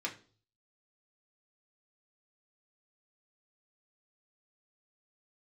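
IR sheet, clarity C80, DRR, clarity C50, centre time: 18.0 dB, −2.0 dB, 13.0 dB, 14 ms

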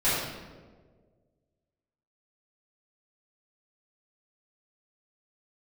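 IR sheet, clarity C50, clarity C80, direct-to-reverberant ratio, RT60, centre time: −1.5 dB, 1.5 dB, −13.0 dB, 1.6 s, 88 ms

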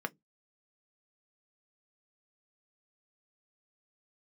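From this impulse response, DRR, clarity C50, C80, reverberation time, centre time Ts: 7.0 dB, 31.5 dB, 44.5 dB, non-exponential decay, 2 ms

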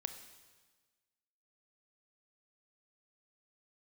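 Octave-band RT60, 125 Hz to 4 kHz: 1.5, 1.5, 1.4, 1.4, 1.3, 1.4 seconds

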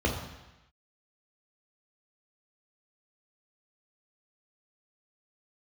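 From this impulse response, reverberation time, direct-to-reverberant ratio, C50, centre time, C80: 1.0 s, −0.5 dB, 5.5 dB, 36 ms, 8.0 dB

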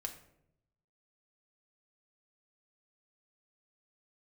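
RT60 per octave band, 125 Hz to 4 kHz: 1.3, 1.0, 0.90, 0.65, 0.60, 0.45 seconds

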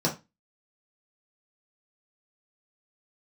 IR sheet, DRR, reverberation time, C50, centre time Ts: −4.0 dB, 0.25 s, 12.0 dB, 17 ms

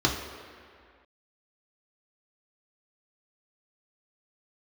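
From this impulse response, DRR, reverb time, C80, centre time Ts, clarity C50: −1.5 dB, 2.1 s, 6.5 dB, 53 ms, 5.0 dB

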